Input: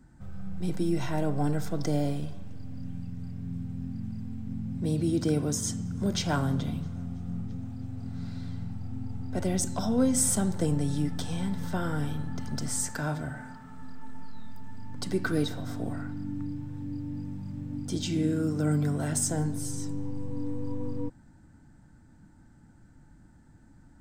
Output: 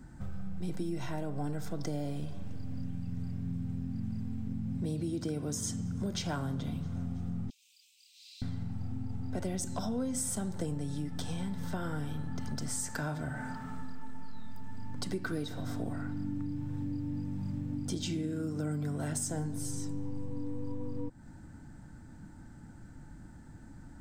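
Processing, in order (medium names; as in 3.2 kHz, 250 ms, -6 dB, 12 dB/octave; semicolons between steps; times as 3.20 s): 7.50–8.42 s: steep high-pass 2.5 kHz 72 dB/octave; compression 6:1, threshold -38 dBFS, peak gain reduction 17 dB; trim +5.5 dB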